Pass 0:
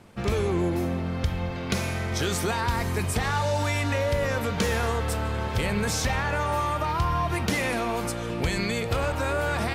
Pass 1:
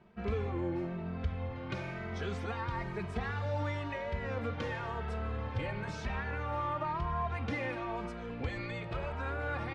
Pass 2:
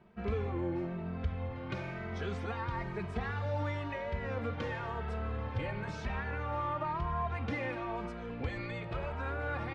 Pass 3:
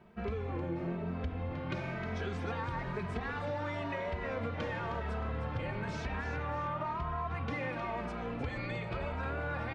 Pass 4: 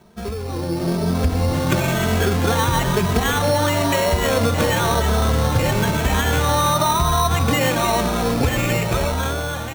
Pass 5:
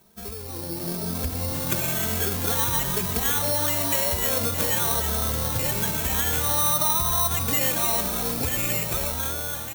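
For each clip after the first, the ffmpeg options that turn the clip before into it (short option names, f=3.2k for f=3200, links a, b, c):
-filter_complex "[0:a]lowpass=2.6k,asplit=2[a][b];[b]adelay=2.7,afreqshift=1[c];[a][c]amix=inputs=2:normalize=1,volume=-6.5dB"
-af "highshelf=f=5k:g=-5.5"
-filter_complex "[0:a]bandreject=f=50:t=h:w=6,bandreject=f=100:t=h:w=6,bandreject=f=150:t=h:w=6,bandreject=f=200:t=h:w=6,bandreject=f=250:t=h:w=6,bandreject=f=300:t=h:w=6,bandreject=f=350:t=h:w=6,acompressor=threshold=-36dB:ratio=6,asplit=5[a][b][c][d][e];[b]adelay=311,afreqshift=80,volume=-9dB[f];[c]adelay=622,afreqshift=160,volume=-17.6dB[g];[d]adelay=933,afreqshift=240,volume=-26.3dB[h];[e]adelay=1244,afreqshift=320,volume=-34.9dB[i];[a][f][g][h][i]amix=inputs=5:normalize=0,volume=3dB"
-af "lowpass=3.1k,dynaudnorm=f=190:g=9:m=10dB,acrusher=samples=9:mix=1:aa=0.000001,volume=8.5dB"
-af "aemphasis=mode=production:type=75fm,volume=-10dB"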